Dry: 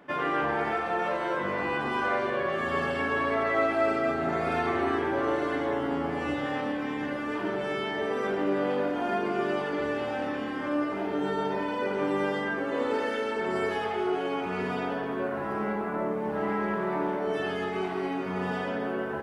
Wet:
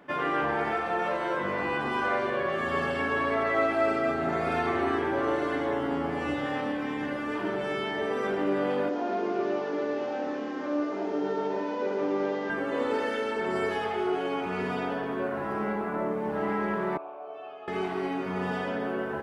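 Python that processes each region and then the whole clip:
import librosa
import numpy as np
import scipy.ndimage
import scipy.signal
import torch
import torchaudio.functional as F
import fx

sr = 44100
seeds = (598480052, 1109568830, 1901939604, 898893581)

y = fx.chain(x, sr, fx.delta_mod(bps=32000, step_db=-42.0),
    fx.highpass(hz=360.0, slope=12),
    fx.tilt_shelf(db=7.0, hz=690.0), at=(8.89, 12.5))
y = fx.chain(y, sr, fx.vowel_filter(vowel='a'),
    fx.peak_eq(hz=200.0, db=-13.0, octaves=0.22), at=(16.97, 17.68))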